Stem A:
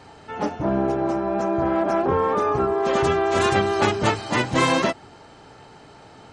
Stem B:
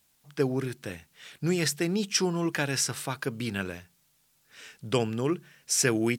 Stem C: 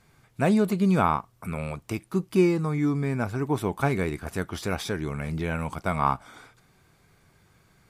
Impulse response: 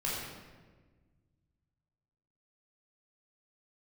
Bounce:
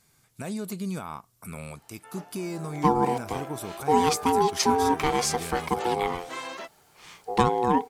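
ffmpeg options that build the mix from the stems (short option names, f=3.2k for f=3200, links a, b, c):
-filter_complex "[0:a]highpass=f=520:p=1,adelay=1750,volume=-14dB[a];[1:a]lowshelf=f=380:g=9,aeval=exprs='val(0)*sin(2*PI*610*n/s)':c=same,adelay=2450,volume=2.5dB[b];[2:a]bass=f=250:g=7,treble=f=4k:g=13,volume=-6.5dB[c];[a][c]amix=inputs=2:normalize=0,lowshelf=f=180:g=-11.5,alimiter=level_in=0.5dB:limit=-24dB:level=0:latency=1:release=154,volume=-0.5dB,volume=0dB[d];[b][d]amix=inputs=2:normalize=0"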